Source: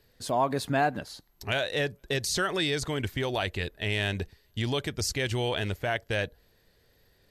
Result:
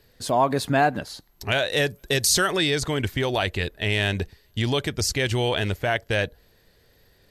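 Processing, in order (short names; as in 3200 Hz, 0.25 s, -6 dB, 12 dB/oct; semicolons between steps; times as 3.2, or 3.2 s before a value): 1.71–2.52 high shelf 6200 Hz +10 dB; gain +5.5 dB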